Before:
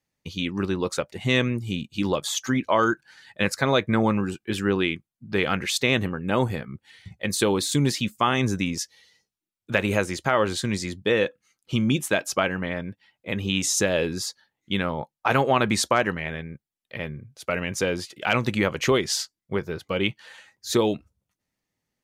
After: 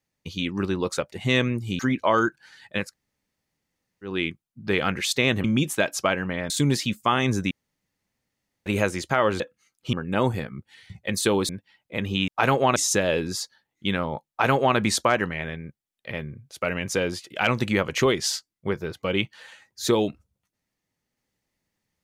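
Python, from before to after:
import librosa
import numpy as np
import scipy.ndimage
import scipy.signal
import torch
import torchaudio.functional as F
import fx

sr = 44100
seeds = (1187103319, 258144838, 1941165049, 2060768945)

y = fx.edit(x, sr, fx.cut(start_s=1.79, length_s=0.65),
    fx.room_tone_fill(start_s=3.47, length_s=1.31, crossfade_s=0.24),
    fx.swap(start_s=6.09, length_s=1.56, other_s=11.77, other_length_s=1.06),
    fx.room_tone_fill(start_s=8.66, length_s=1.15),
    fx.cut(start_s=10.55, length_s=0.69),
    fx.duplicate(start_s=15.15, length_s=0.48, to_s=13.62), tone=tone)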